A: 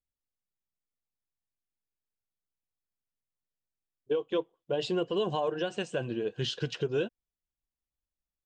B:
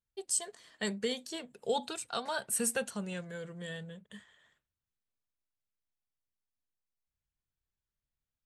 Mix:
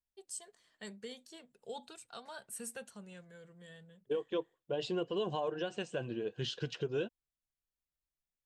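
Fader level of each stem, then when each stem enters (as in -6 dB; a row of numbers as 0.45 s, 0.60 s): -5.5 dB, -12.5 dB; 0.00 s, 0.00 s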